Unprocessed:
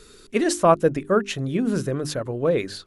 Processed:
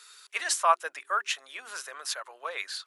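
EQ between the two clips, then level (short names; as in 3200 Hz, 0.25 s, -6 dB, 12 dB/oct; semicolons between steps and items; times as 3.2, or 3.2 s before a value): HPF 930 Hz 24 dB/oct; 0.0 dB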